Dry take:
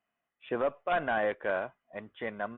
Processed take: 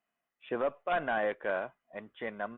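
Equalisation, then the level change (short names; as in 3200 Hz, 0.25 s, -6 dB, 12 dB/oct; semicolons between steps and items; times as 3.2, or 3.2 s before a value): bell 87 Hz -11.5 dB 0.5 oct; -1.5 dB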